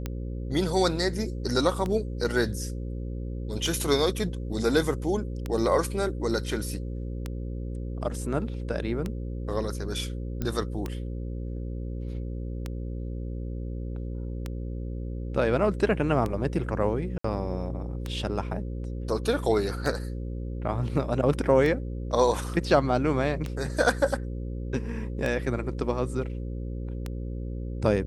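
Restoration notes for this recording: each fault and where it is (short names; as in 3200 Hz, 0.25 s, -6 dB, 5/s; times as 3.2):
buzz 60 Hz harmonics 9 -33 dBFS
tick 33 1/3 rpm -17 dBFS
10.42 pop -17 dBFS
17.18–17.24 gap 64 ms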